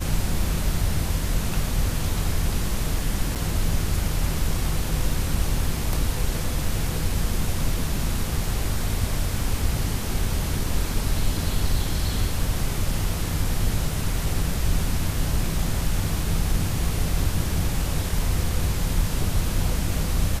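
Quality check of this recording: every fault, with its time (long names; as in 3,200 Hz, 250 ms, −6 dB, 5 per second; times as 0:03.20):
0:03.35–0:03.36: drop-out 7.6 ms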